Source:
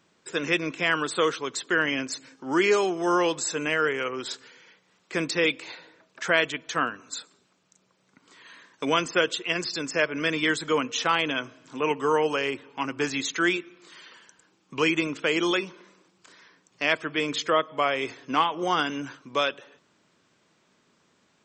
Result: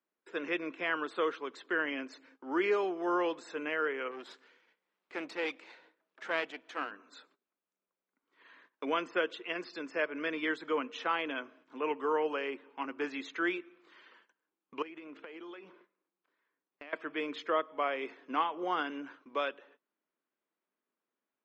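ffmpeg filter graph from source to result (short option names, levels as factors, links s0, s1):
-filter_complex "[0:a]asettb=1/sr,asplit=3[s0][s1][s2];[s0]atrim=end=4.114[s3];[s1]atrim=start=4.11:end=6.91,asetpts=PTS-STARTPTS,afade=t=in:d=0.004:c=qsin,afade=t=out:st=2.796:d=0.004:c=qsin,aeval=exprs='if(lt(val(0),0),0.251*val(0),val(0))':c=same,highshelf=f=5800:g=9,acompressor=mode=upward:threshold=0.00562:ratio=2.5:attack=3.2:release=140:knee=2.83:detection=peak[s4];[s2]atrim=start=6.906[s5];[s3][s4]acrossfade=d=0.004:c1=hsin:c2=qsin[s6];[s6][s5]acrossfade=d=0.004:c1=qsin:c2=hsin,asettb=1/sr,asplit=3[s7][s8][s9];[s7]atrim=end=14.824[s10];[s8]atrim=start=14.82:end=16.93,asetpts=PTS-STARTPTS,afade=t=in:d=0.004:c=qsin,afade=t=out:st=2.106:d=0.004:c=qsin,aeval=exprs='if(lt(val(0),0),0.708*val(0),val(0))':c=same,highshelf=f=7100:g=-11,acompressor=threshold=0.02:ratio=16:attack=3.2:release=140:knee=1:detection=peak[s11];[s9]atrim=start=16.926[s12];[s10][s11]acrossfade=d=0.004:c1=hsin:c2=qsin[s13];[s13][s12]acrossfade=d=0.004:c1=qsin:c2=hsin,highpass=f=240:w=0.5412,highpass=f=240:w=1.3066,agate=range=0.158:threshold=0.00251:ratio=16:detection=peak,lowpass=2400,volume=0.422"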